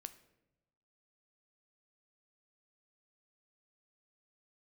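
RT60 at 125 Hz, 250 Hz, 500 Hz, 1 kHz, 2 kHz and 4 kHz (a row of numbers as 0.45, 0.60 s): 1.3, 1.1, 1.1, 0.90, 0.75, 0.60 s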